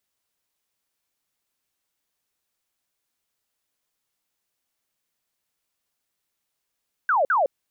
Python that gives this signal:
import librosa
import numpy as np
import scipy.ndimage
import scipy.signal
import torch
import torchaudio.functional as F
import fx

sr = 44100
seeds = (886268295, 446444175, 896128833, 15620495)

y = fx.laser_zaps(sr, level_db=-17.0, start_hz=1600.0, end_hz=510.0, length_s=0.16, wave='sine', shots=2, gap_s=0.05)